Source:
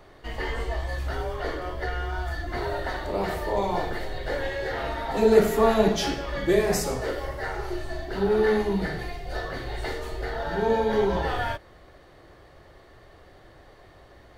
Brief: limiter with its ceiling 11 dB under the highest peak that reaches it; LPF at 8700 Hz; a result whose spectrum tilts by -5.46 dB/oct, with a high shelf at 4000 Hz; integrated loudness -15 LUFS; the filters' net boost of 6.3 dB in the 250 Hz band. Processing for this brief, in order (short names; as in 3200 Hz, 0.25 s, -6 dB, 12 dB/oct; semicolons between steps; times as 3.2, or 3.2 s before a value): LPF 8700 Hz; bell 250 Hz +8.5 dB; high shelf 4000 Hz -4 dB; gain +11.5 dB; limiter -2 dBFS